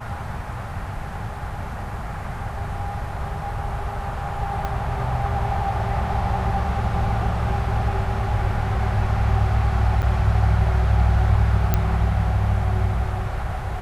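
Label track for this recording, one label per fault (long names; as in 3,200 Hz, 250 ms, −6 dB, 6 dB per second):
4.650000	4.650000	click −14 dBFS
10.020000	10.030000	drop-out 8 ms
11.740000	11.740000	click −7 dBFS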